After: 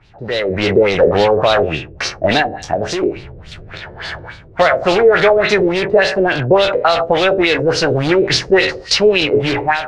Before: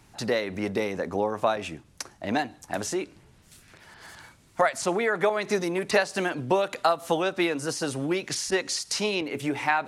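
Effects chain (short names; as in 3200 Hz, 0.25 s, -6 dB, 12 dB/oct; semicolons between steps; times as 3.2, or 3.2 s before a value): spectral trails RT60 0.44 s; in parallel at -6.5 dB: wrapped overs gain 24.5 dB; 2.42–3.03 on the sum: compressor, threshold -30 dBFS, peak gain reduction 7.5 dB; ten-band EQ 250 Hz -12 dB, 1000 Hz -9 dB, 2000 Hz -3 dB; LFO low-pass sine 3.5 Hz 430–4300 Hz; high shelf 3500 Hz -8 dB; AGC gain up to 15 dB; maximiser +6 dB; gain -1 dB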